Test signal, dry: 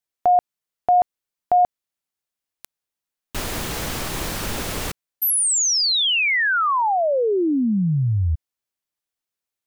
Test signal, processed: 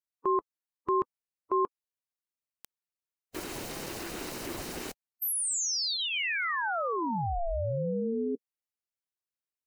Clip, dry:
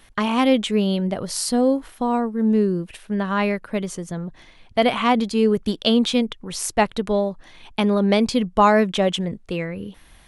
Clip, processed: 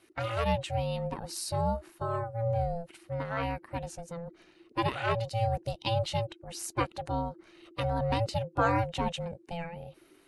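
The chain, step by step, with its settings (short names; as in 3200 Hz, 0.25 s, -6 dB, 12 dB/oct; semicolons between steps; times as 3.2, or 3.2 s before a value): bin magnitudes rounded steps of 15 dB; ring modulator 340 Hz; notch 3400 Hz, Q 12; gain -8 dB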